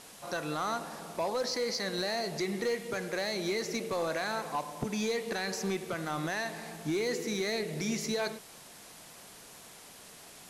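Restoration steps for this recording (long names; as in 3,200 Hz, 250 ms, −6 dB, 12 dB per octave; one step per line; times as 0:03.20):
clipped peaks rebuilt −25.5 dBFS
broadband denoise 29 dB, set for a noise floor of −52 dBFS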